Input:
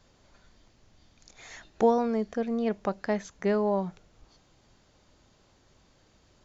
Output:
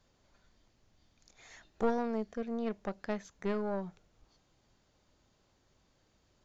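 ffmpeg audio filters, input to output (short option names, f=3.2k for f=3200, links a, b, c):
-af "aeval=exprs='(tanh(7.94*val(0)+0.8)-tanh(0.8))/7.94':c=same,volume=-3.5dB"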